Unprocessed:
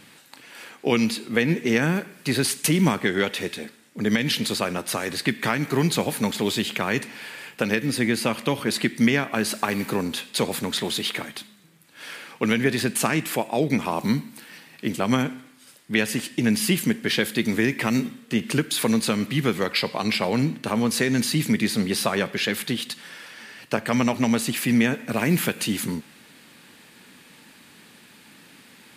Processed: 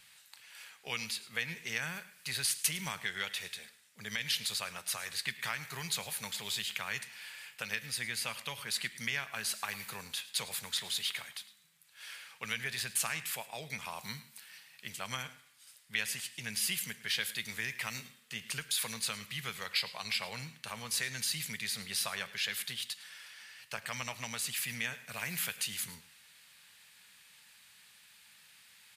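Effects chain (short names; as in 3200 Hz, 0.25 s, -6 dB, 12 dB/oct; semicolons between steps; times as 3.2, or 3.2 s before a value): passive tone stack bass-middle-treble 10-0-10; echo 0.107 s -18 dB; gain -5.5 dB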